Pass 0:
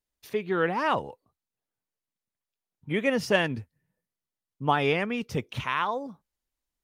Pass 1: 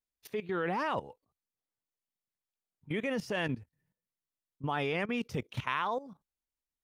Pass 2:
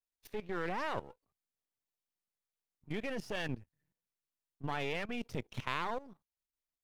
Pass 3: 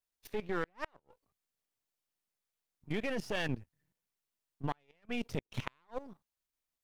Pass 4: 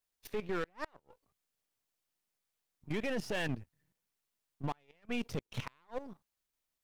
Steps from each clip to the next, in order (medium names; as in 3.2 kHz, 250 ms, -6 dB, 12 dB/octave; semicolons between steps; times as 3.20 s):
level held to a coarse grid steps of 16 dB
partial rectifier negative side -12 dB; trim -1.5 dB
inverted gate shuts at -24 dBFS, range -38 dB; trim +3 dB
saturation -29 dBFS, distortion -13 dB; trim +2.5 dB